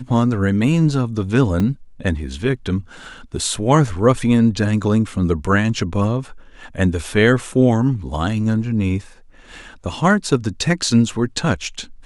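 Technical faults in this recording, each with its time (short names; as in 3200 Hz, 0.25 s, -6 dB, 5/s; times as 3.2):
1.6 gap 2.9 ms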